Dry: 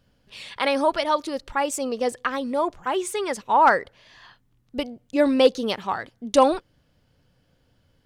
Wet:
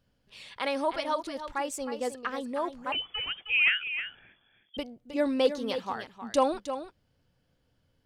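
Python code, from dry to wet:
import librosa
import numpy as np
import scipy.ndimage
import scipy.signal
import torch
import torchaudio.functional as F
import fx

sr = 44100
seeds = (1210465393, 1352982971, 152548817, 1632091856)

p1 = x + fx.echo_single(x, sr, ms=313, db=-10.0, dry=0)
p2 = fx.freq_invert(p1, sr, carrier_hz=3400, at=(2.92, 4.77))
y = p2 * librosa.db_to_amplitude(-8.0)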